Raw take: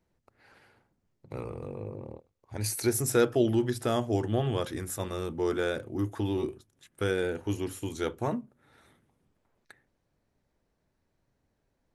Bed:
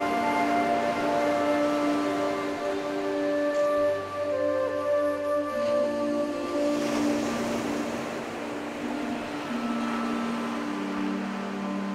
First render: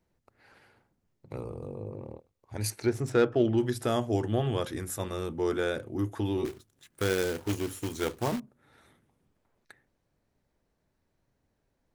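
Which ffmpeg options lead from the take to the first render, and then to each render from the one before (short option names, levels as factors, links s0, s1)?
-filter_complex "[0:a]asplit=3[s0][s1][s2];[s0]afade=t=out:st=1.36:d=0.02[s3];[s1]equalizer=f=2000:t=o:w=1.1:g=-13,afade=t=in:st=1.36:d=0.02,afade=t=out:st=1.91:d=0.02[s4];[s2]afade=t=in:st=1.91:d=0.02[s5];[s3][s4][s5]amix=inputs=3:normalize=0,asettb=1/sr,asplit=3[s6][s7][s8];[s6]atrim=end=2.704[s9];[s7]atrim=start=2.7:end=3.58,asetpts=PTS-STARTPTS,afade=t=in:d=0.004:c=qsin,afade=t=out:st=0.876:d=0.004:c=qsin,adynamicsmooth=sensitivity=2.5:basefreq=2600[s10];[s8]atrim=start=3.576[s11];[s9][s10]acrossfade=d=0.004:c1=hsin:c2=qsin[s12];[s12][s11]acrossfade=d=0.004:c1=qsin:c2=hsin,asettb=1/sr,asplit=3[s13][s14][s15];[s13]atrim=end=6.454[s16];[s14]atrim=start=6.45:end=8.4,asetpts=PTS-STARTPTS,afade=t=in:d=0.004:c=qsin,afade=t=out:st=1.946:d=0.004:c=qsin,acrusher=bits=2:mode=log:mix=0:aa=0.000001[s17];[s15]atrim=start=8.396[s18];[s16][s17]acrossfade=d=0.004:c1=hsin:c2=qsin[s19];[s19][s18]acrossfade=d=0.004:c1=qsin:c2=hsin"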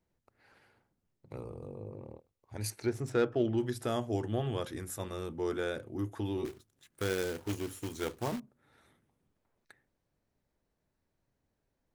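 -af "volume=0.562"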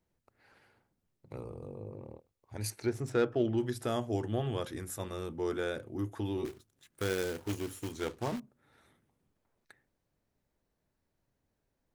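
-filter_complex "[0:a]asettb=1/sr,asplit=3[s0][s1][s2];[s0]atrim=end=7.914[s3];[s1]atrim=start=7.91:end=8.36,asetpts=PTS-STARTPTS,afade=t=in:d=0.004:c=qsin,afade=t=out:st=0.446:d=0.004:c=qsin,highshelf=f=11000:g=-11.5[s4];[s2]atrim=start=8.356[s5];[s3][s4]acrossfade=d=0.004:c1=hsin:c2=qsin[s6];[s6][s5]acrossfade=d=0.004:c1=qsin:c2=hsin"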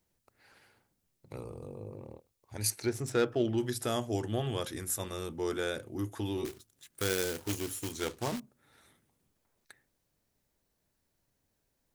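-af "highshelf=f=3200:g=10"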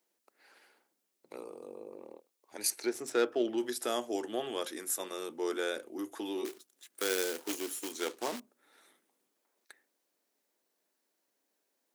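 -af "highpass=f=280:w=0.5412,highpass=f=280:w=1.3066"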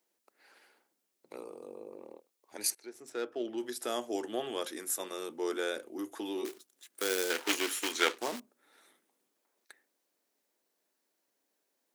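-filter_complex "[0:a]asettb=1/sr,asplit=3[s0][s1][s2];[s0]atrim=end=7.304[s3];[s1]atrim=start=7.3:end=8.18,asetpts=PTS-STARTPTS,afade=t=in:d=0.004:c=qsin,afade=t=out:st=0.876:d=0.004:c=qsin,equalizer=f=2000:w=0.41:g=13.5[s4];[s2]atrim=start=8.176[s5];[s3][s4]acrossfade=d=0.004:c1=hsin:c2=qsin[s6];[s6][s5]acrossfade=d=0.004:c1=qsin:c2=hsin,asplit=2[s7][s8];[s7]atrim=end=2.75,asetpts=PTS-STARTPTS,afade=t=out:st=2.746:d=0.004:c=hsin:silence=0.125893[s9];[s8]atrim=start=2.75,asetpts=PTS-STARTPTS,afade=t=in:d=1.44:silence=0.125893[s10];[s9][s10]concat=n=2:v=0:a=1"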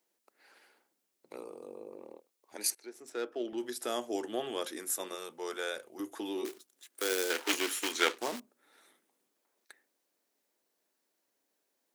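-filter_complex "[0:a]asettb=1/sr,asplit=3[s0][s1][s2];[s0]atrim=end=2.564[s3];[s1]atrim=start=2.56:end=3.53,asetpts=PTS-STARTPTS,afade=t=in:d=0.004:c=qsin,afade=t=out:st=0.966:d=0.004:c=qsin,highpass=180[s4];[s2]atrim=start=3.526[s5];[s3][s4]acrossfade=d=0.004:c1=hsin:c2=qsin[s6];[s6][s5]acrossfade=d=0.004:c1=qsin:c2=hsin,asettb=1/sr,asplit=3[s7][s8][s9];[s7]atrim=end=5.154[s10];[s8]atrim=start=5.15:end=6,asetpts=PTS-STARTPTS,afade=t=in:d=0.004:c=qsin,afade=t=out:st=0.846:d=0.004:c=qsin,equalizer=f=290:w=1.8:g=-13.5[s11];[s9]atrim=start=5.996[s12];[s10][s11]acrossfade=d=0.004:c1=hsin:c2=qsin[s13];[s13][s12]acrossfade=d=0.004:c1=qsin:c2=hsin,asettb=1/sr,asplit=3[s14][s15][s16];[s14]atrim=end=6.864[s17];[s15]atrim=start=6.86:end=7.54,asetpts=PTS-STARTPTS,afade=t=in:d=0.004:c=qsin,afade=t=out:st=0.676:d=0.004:c=qsin,highpass=f=230:w=0.5412,highpass=f=230:w=1.3066[s18];[s16]atrim=start=7.536[s19];[s17][s18]acrossfade=d=0.004:c1=hsin:c2=qsin[s20];[s20][s19]acrossfade=d=0.004:c1=qsin:c2=hsin"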